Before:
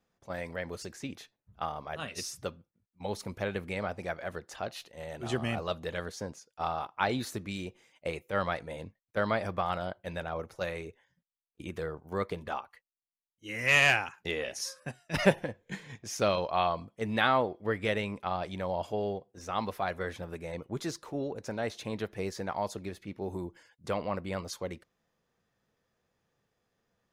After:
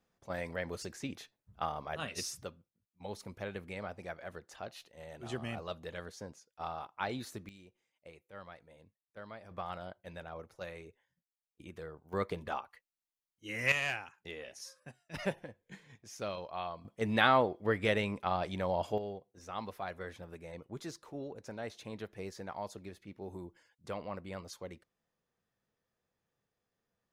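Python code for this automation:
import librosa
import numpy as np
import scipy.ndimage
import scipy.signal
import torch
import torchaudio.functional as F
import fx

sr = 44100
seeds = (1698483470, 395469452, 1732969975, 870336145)

y = fx.gain(x, sr, db=fx.steps((0.0, -1.0), (2.43, -7.5), (7.49, -19.0), (9.51, -9.5), (12.13, -2.0), (13.72, -11.5), (16.85, 0.0), (18.98, -8.0)))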